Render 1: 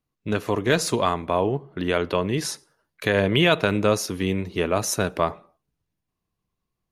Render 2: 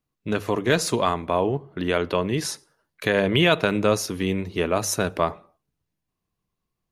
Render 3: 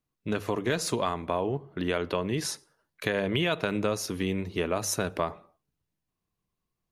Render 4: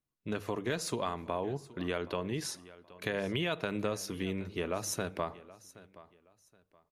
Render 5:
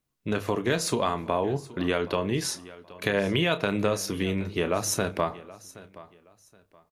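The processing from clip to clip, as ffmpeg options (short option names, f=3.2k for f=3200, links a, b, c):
-af "bandreject=f=50:t=h:w=6,bandreject=f=100:t=h:w=6"
-af "acompressor=threshold=-21dB:ratio=3,volume=-3dB"
-af "aecho=1:1:773|1546:0.112|0.0292,volume=-6dB"
-filter_complex "[0:a]asplit=2[a][b];[b]adelay=30,volume=-11.5dB[c];[a][c]amix=inputs=2:normalize=0,volume=8dB"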